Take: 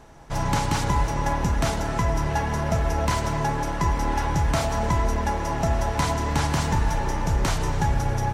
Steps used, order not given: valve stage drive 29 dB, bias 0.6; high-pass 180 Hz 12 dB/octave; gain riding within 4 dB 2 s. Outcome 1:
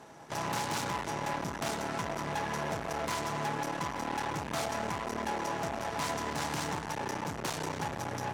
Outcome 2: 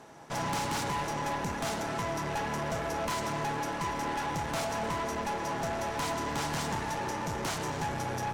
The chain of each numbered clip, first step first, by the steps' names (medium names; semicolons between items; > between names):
gain riding > valve stage > high-pass; gain riding > high-pass > valve stage